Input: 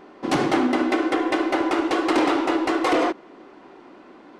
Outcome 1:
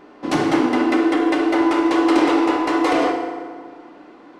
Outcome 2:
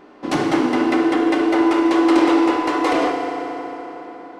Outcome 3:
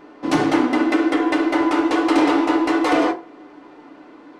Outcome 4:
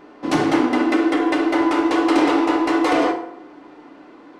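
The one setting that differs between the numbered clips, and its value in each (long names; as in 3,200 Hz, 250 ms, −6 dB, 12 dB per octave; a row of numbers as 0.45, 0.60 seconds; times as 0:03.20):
feedback delay network reverb, RT60: 1.8, 4.4, 0.34, 0.75 seconds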